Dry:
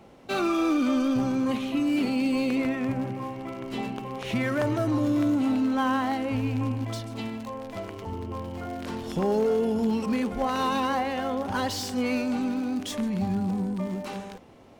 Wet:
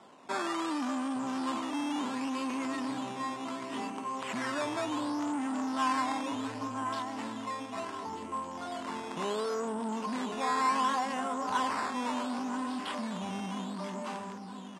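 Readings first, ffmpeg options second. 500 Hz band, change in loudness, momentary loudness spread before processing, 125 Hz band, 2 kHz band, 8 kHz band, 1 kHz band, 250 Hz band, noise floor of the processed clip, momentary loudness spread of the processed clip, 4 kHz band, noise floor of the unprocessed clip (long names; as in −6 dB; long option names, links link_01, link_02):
−9.0 dB, −6.5 dB, 11 LU, −16.0 dB, −3.5 dB, −1.0 dB, −0.5 dB, −9.0 dB, −43 dBFS, 8 LU, −3.5 dB, −40 dBFS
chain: -af "bandreject=frequency=830:width=12,aecho=1:1:982|1964|2946|3928:0.316|0.114|0.041|0.0148,acrusher=samples=10:mix=1:aa=0.000001:lfo=1:lforange=10:lforate=0.69,asoftclip=type=tanh:threshold=-25.5dB,highpass=300,equalizer=frequency=350:width_type=q:width=4:gain=-5,equalizer=frequency=510:width_type=q:width=4:gain=-8,equalizer=frequency=1000:width_type=q:width=4:gain=8,equalizer=frequency=2300:width_type=q:width=4:gain=-4,equalizer=frequency=4200:width_type=q:width=4:gain=-5,equalizer=frequency=6100:width_type=q:width=4:gain=-5,lowpass=frequency=8300:width=0.5412,lowpass=frequency=8300:width=1.3066"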